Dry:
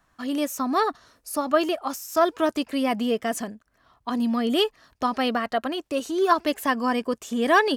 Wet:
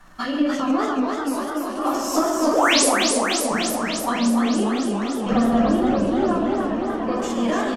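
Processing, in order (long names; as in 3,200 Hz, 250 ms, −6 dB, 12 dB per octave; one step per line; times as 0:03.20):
fade-out on the ending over 1.10 s
treble cut that deepens with the level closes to 1,700 Hz, closed at −21 dBFS
0:05.32–0:06.07: spectral tilt −4.5 dB per octave
downward compressor, threshold −33 dBFS, peak gain reduction 17 dB
repeating echo 134 ms, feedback 56%, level −8.5 dB
shaped tremolo saw down 0.57 Hz, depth 95%
0:02.53–0:02.85: sound drawn into the spectrogram rise 400–12,000 Hz −32 dBFS
rectangular room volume 56 cubic metres, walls mixed, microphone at 1.1 metres
transient designer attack +1 dB, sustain +6 dB
feedback echo with a swinging delay time 291 ms, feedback 77%, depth 162 cents, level −4 dB
level +8.5 dB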